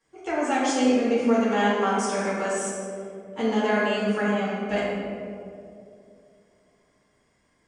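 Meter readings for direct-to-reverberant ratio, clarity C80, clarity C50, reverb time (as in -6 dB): -9.5 dB, 0.0 dB, -2.0 dB, 2.5 s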